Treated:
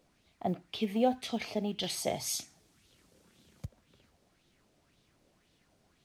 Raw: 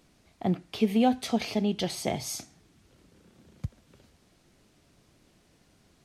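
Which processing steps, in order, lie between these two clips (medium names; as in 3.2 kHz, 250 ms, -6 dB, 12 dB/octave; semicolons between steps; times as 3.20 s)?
1.83–3.65 s: treble shelf 3.4 kHz +10 dB; companded quantiser 8-bit; sweeping bell 1.9 Hz 530–3700 Hz +9 dB; trim -8 dB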